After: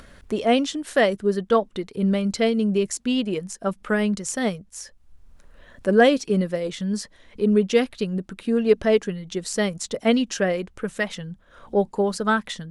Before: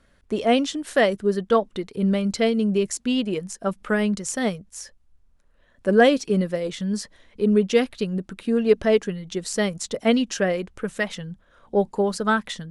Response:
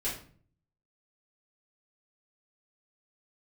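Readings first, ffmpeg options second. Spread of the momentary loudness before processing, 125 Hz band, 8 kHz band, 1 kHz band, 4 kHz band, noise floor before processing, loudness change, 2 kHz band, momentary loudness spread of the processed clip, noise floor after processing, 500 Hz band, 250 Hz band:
11 LU, 0.0 dB, 0.0 dB, 0.0 dB, 0.0 dB, −60 dBFS, 0.0 dB, 0.0 dB, 11 LU, −55 dBFS, 0.0 dB, 0.0 dB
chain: -af "acompressor=mode=upward:threshold=-35dB:ratio=2.5"

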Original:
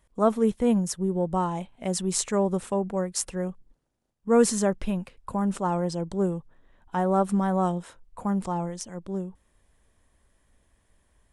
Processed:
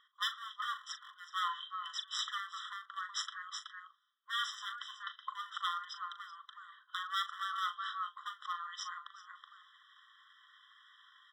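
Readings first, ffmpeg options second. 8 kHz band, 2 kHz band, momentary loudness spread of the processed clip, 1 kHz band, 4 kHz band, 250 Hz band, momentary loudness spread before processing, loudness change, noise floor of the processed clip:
−17.0 dB, +1.0 dB, 15 LU, −8.5 dB, +3.0 dB, below −40 dB, 11 LU, −13.0 dB, −69 dBFS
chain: -filter_complex "[0:a]aeval=exprs='if(lt(val(0),0),0.708*val(0),val(0))':channel_layout=same,highpass=210,equalizer=frequency=240:width_type=q:width=4:gain=8,equalizer=frequency=390:width_type=q:width=4:gain=-8,equalizer=frequency=550:width_type=q:width=4:gain=-10,equalizer=frequency=820:width_type=q:width=4:gain=-7,equalizer=frequency=1300:width_type=q:width=4:gain=7,equalizer=frequency=2600:width_type=q:width=4:gain=-5,lowpass=frequency=4300:width=0.5412,lowpass=frequency=4300:width=1.3066,aecho=1:1:374:0.224,aeval=exprs='0.0596*(abs(mod(val(0)/0.0596+3,4)-2)-1)':channel_layout=same,areverse,acompressor=threshold=-46dB:ratio=4,areverse,equalizer=frequency=3100:width_type=o:width=0.55:gain=9.5,bandreject=frequency=1600:width=20,asplit=2[link_01][link_02];[link_02]adelay=39,volume=-11dB[link_03];[link_01][link_03]amix=inputs=2:normalize=0,afftfilt=real='re*eq(mod(floor(b*sr/1024/1000),2),1)':imag='im*eq(mod(floor(b*sr/1024/1000),2),1)':win_size=1024:overlap=0.75,volume=13dB"

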